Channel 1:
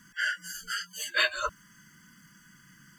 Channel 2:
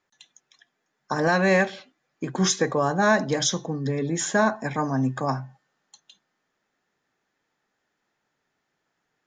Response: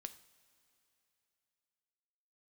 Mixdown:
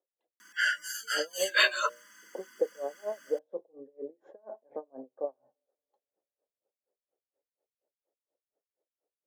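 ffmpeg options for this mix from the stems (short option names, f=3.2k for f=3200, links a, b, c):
-filter_complex "[0:a]bandreject=f=60:t=h:w=6,bandreject=f=120:t=h:w=6,bandreject=f=180:t=h:w=6,bandreject=f=240:t=h:w=6,bandreject=f=300:t=h:w=6,bandreject=f=360:t=h:w=6,bandreject=f=420:t=h:w=6,bandreject=f=480:t=h:w=6,bandreject=f=540:t=h:w=6,bandreject=f=600:t=h:w=6,adelay=400,volume=2dB[a];[1:a]acompressor=threshold=-22dB:ratio=5,lowpass=f=540:t=q:w=4.9,aeval=exprs='val(0)*pow(10,-35*(0.5-0.5*cos(2*PI*4.2*n/s))/20)':c=same,volume=-9.5dB,asplit=2[b][c];[c]volume=-23dB[d];[2:a]atrim=start_sample=2205[e];[d][e]afir=irnorm=-1:irlink=0[f];[a][b][f]amix=inputs=3:normalize=0,highpass=f=340:w=0.5412,highpass=f=340:w=1.3066"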